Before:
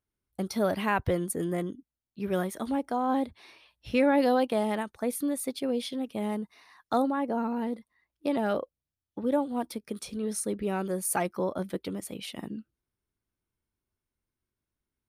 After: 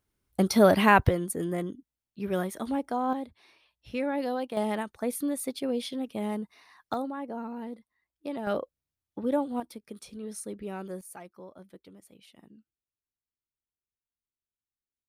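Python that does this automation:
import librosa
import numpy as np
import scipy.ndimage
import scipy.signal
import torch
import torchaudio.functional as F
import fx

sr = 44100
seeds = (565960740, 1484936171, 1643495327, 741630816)

y = fx.gain(x, sr, db=fx.steps((0.0, 8.0), (1.09, -0.5), (3.13, -7.0), (4.57, -0.5), (6.94, -7.0), (8.47, -0.5), (9.6, -7.0), (11.01, -17.0)))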